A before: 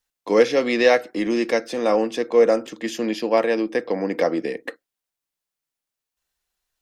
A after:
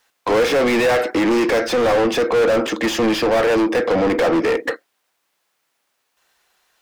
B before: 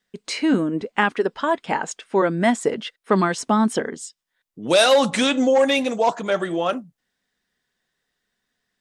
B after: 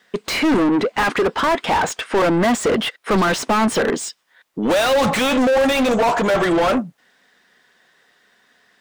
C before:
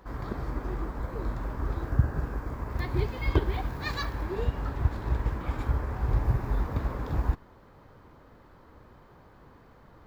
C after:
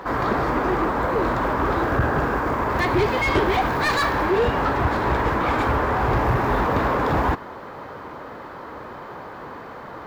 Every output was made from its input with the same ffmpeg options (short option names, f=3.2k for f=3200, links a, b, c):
-filter_complex "[0:a]asplit=2[a][b];[b]highpass=f=720:p=1,volume=37dB,asoftclip=type=tanh:threshold=-2.5dB[c];[a][c]amix=inputs=2:normalize=0,lowpass=f=1.5k:p=1,volume=-6dB,crystalizer=i=0.5:c=0,volume=-6dB"